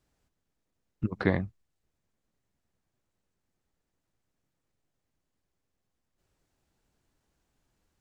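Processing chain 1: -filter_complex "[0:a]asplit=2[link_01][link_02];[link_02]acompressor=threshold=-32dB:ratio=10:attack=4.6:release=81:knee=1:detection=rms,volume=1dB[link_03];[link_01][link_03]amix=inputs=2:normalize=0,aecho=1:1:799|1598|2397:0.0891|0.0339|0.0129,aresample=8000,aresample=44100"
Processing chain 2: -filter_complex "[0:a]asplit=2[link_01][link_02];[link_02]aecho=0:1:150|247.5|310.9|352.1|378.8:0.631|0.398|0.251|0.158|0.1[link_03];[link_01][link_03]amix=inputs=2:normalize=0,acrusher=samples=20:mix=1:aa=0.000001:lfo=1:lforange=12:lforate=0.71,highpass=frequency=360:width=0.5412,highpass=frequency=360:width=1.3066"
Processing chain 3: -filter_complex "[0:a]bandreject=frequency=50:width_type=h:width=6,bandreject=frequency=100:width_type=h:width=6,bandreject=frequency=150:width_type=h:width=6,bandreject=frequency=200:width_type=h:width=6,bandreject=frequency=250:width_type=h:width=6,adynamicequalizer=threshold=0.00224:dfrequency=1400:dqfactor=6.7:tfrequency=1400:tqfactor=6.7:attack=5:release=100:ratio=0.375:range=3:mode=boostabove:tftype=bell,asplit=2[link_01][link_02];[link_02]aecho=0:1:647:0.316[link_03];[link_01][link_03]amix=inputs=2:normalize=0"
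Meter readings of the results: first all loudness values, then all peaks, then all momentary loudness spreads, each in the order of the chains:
−29.0, −33.5, −33.0 LKFS; −7.0, −9.0, −8.5 dBFS; 21, 15, 15 LU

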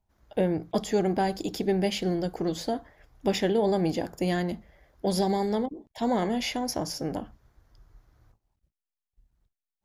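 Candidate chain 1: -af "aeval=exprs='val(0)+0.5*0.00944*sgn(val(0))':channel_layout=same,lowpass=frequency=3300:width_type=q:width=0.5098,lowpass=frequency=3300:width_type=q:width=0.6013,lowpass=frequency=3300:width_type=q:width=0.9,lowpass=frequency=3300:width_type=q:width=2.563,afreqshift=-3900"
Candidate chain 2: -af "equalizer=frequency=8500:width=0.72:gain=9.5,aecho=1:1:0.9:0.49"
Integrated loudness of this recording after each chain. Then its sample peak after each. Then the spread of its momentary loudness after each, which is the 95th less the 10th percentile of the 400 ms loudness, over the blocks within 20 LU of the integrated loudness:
−24.0, −27.5 LKFS; −11.5, −11.0 dBFS; 21, 8 LU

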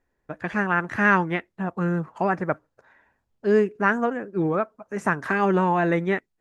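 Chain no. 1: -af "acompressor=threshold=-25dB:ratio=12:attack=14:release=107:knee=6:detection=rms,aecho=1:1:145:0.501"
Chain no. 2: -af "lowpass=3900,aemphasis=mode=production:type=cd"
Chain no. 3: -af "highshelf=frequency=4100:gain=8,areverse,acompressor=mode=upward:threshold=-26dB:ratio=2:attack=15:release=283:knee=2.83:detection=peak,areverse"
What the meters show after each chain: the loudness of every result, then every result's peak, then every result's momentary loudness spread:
−30.0, −24.0, −23.5 LKFS; −13.5, −5.5, −5.0 dBFS; 6, 10, 10 LU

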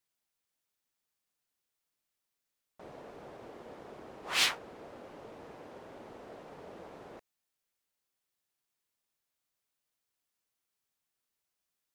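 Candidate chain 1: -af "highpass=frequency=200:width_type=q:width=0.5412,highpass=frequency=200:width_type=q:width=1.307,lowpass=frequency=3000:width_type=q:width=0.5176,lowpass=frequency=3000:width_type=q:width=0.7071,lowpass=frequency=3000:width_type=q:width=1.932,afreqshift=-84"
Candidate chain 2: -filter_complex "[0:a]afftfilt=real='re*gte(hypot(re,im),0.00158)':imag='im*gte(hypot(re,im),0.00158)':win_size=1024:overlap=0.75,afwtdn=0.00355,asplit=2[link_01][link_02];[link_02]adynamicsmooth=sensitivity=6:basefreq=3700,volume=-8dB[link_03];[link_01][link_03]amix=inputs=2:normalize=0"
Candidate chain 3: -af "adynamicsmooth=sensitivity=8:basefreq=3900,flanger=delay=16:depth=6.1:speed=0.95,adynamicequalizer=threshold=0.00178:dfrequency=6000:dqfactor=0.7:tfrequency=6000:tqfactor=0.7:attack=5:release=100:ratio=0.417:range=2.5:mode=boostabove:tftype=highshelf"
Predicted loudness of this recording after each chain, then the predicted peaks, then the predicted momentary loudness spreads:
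−41.5, −28.5, −32.5 LKFS; −18.5, −10.0, −16.0 dBFS; 19, 22, 22 LU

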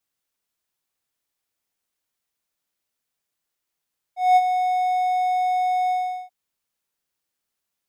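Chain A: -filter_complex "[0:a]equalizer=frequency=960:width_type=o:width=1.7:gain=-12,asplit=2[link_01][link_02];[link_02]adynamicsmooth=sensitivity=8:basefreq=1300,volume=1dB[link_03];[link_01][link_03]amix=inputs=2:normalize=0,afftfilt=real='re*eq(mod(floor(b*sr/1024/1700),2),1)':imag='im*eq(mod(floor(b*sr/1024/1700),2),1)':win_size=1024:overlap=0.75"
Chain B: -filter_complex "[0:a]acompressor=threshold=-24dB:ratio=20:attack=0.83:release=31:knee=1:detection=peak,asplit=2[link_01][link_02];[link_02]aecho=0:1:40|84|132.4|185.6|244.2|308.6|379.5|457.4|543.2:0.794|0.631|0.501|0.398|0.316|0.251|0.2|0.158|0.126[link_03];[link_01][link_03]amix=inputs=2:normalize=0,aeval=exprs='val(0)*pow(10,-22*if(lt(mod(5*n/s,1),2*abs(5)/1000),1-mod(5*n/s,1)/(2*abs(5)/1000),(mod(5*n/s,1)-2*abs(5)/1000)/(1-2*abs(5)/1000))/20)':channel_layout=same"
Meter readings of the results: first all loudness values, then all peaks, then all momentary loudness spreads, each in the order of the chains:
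−36.5, −36.0 LKFS; −24.0, −22.0 dBFS; 8, 10 LU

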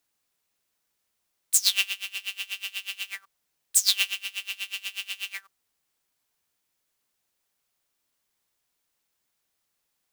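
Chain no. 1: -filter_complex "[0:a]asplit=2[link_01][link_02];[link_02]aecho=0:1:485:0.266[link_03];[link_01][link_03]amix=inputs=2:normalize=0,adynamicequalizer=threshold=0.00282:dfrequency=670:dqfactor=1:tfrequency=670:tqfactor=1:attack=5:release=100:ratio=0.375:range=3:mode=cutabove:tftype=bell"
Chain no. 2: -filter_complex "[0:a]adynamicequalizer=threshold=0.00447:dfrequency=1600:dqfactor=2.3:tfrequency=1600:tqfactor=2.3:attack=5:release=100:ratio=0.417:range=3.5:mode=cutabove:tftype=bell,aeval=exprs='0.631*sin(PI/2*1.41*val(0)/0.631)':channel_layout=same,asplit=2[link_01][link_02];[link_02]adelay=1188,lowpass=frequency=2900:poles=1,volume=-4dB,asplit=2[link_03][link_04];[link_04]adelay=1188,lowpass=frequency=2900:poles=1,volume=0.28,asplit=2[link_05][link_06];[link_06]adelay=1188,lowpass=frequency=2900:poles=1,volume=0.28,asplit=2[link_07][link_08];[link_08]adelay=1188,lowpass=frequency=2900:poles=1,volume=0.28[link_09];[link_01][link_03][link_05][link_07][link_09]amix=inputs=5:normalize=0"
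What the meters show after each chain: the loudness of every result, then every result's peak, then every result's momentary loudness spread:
−26.5, −21.5 LKFS; −4.0, −4.0 dBFS; 19, 18 LU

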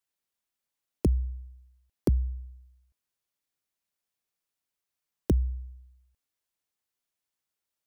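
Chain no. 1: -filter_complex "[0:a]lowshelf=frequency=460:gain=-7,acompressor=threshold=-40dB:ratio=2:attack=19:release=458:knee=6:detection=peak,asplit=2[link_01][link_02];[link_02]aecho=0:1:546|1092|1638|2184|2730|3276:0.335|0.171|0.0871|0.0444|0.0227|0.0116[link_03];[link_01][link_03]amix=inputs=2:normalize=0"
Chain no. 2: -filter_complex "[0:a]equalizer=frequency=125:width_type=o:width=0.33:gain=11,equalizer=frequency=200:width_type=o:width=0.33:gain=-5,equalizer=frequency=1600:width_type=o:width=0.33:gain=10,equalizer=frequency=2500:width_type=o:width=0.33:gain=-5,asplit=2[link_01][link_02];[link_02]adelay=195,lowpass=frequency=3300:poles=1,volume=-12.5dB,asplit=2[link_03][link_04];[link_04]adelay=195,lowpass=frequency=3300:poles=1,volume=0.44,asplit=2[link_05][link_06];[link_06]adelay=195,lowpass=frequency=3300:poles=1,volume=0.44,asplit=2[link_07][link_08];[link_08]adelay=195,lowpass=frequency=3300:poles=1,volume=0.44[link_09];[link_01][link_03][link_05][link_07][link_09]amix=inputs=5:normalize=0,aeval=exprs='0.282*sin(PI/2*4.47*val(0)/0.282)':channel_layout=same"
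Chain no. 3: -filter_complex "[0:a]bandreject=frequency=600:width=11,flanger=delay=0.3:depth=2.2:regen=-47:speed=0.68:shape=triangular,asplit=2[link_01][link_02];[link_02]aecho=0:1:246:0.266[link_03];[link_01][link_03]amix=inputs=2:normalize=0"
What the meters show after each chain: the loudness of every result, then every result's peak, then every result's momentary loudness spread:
−45.5, −21.0, −34.0 LKFS; −17.5, −11.0, −18.0 dBFS; 21, 19, 14 LU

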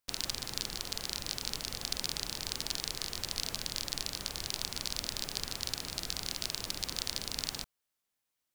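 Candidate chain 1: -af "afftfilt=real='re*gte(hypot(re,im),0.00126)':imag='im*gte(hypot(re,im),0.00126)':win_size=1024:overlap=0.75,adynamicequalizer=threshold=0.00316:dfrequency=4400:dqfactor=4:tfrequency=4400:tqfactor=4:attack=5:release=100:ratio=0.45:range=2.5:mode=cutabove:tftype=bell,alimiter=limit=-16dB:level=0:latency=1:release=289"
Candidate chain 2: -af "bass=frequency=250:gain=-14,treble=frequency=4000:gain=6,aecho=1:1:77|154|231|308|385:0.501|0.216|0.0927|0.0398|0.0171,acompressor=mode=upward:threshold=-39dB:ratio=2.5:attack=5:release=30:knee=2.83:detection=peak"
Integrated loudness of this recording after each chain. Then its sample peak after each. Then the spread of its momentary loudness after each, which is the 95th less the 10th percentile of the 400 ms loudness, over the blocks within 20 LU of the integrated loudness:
−39.5, −30.5 LKFS; −16.0, −6.0 dBFS; 1, 2 LU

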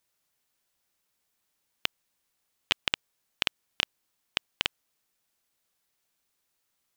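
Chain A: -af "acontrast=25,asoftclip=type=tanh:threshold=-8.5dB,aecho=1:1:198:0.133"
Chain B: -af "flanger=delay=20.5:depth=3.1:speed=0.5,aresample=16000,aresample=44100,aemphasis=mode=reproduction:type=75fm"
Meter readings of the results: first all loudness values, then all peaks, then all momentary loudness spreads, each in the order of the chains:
−32.5, −39.0 LKFS; −8.5, −11.5 dBFS; 20, 6 LU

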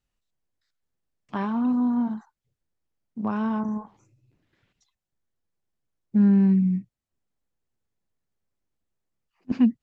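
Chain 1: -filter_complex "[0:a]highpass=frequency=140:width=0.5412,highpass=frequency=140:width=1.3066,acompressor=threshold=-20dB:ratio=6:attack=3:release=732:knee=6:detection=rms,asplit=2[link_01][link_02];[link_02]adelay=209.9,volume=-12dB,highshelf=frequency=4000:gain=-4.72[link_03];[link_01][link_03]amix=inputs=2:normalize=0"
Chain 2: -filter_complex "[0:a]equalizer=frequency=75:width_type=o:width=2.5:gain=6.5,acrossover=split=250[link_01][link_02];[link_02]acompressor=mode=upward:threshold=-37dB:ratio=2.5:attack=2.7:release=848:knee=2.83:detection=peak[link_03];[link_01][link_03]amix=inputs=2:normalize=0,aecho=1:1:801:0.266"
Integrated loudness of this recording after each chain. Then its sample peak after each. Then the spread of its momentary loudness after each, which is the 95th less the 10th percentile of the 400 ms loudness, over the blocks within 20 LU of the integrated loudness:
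−28.0, −22.5 LKFS; −17.0, −8.5 dBFS; 19, 20 LU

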